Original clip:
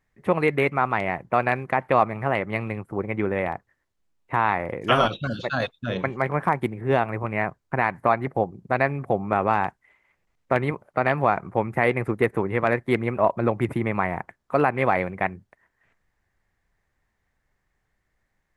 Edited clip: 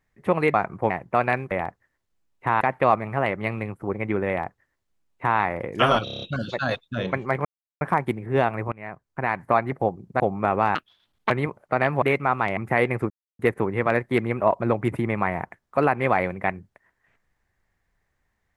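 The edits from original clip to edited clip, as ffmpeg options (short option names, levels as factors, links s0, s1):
-filter_complex "[0:a]asplit=19[s0][s1][s2][s3][s4][s5][s6][s7][s8][s9][s10][s11][s12][s13][s14][s15][s16][s17][s18];[s0]atrim=end=0.542[s19];[s1]atrim=start=11.268:end=11.632[s20];[s2]atrim=start=1.088:end=1.702[s21];[s3]atrim=start=3.378:end=4.482[s22];[s4]atrim=start=1.698:end=5.162[s23];[s5]atrim=start=5.128:end=5.162[s24];[s6]atrim=start=5.128:end=5.162[s25];[s7]atrim=start=5.128:end=5.162[s26];[s8]atrim=start=5.128:end=5.162[s27];[s9]atrim=start=5.128:end=5.162[s28];[s10]atrim=start=5.128:end=6.36,asetpts=PTS-STARTPTS,afade=t=out:st=1.228:d=0.004:c=hsin,apad=pad_dur=0.36[s29];[s11]atrim=start=6.36:end=7.27,asetpts=PTS-STARTPTS,afade=t=in:d=0.004:c=hsin,afade=t=out:st=0.906:d=0.004:c=hsin:silence=0.1[s30];[s12]atrim=start=7.27:end=8.752,asetpts=PTS-STARTPTS,afade=t=in:d=0.76:silence=0.1[s31];[s13]atrim=start=9.078:end=9.634[s32];[s14]atrim=start=9.63:end=10.55,asetpts=PTS-STARTPTS,asetrate=73647,aresample=44100[s33];[s15]atrim=start=10.546:end=11.272[s34];[s16]atrim=start=0.538:end=1.092[s35];[s17]atrim=start=11.628:end=12.16,asetpts=PTS-STARTPTS,afade=t=out:st=0.528:d=0.004:c=hsin,apad=pad_dur=0.29[s36];[s18]atrim=start=12.16,asetpts=PTS-STARTPTS,afade=t=in:d=0.004:c=hsin[s37];[s19][s20]acrossfade=d=0.004:c1=hsin:c2=hsin[s38];[s38][s21]acrossfade=d=0.004:c1=hsin:c2=hsin[s39];[s39][s22]acrossfade=d=0.004:c1=hsin:c2=hsin[s40];[s40][s23]acrossfade=d=0.004:c1=hsin:c2=hsin[s41];[s41][s24]acrossfade=d=0.004:c1=hsin:c2=hsin[s42];[s42][s25]acrossfade=d=0.004:c1=hsin:c2=hsin[s43];[s43][s26]acrossfade=d=0.004:c1=hsin:c2=hsin[s44];[s44][s27]acrossfade=d=0.004:c1=hsin:c2=hsin[s45];[s45][s28]acrossfade=d=0.004:c1=hsin:c2=hsin[s46];[s29][s30][s31]concat=n=3:v=0:a=1[s47];[s46][s47]acrossfade=d=0.004:c1=hsin:c2=hsin[s48];[s48][s32]acrossfade=d=0.004:c1=hsin:c2=hsin[s49];[s49][s33]acrossfade=d=0.004:c1=hsin:c2=hsin[s50];[s50][s34]acrossfade=d=0.004:c1=hsin:c2=hsin[s51];[s51][s35]acrossfade=d=0.004:c1=hsin:c2=hsin[s52];[s36][s37]concat=n=2:v=0:a=1[s53];[s52][s53]acrossfade=d=0.004:c1=hsin:c2=hsin"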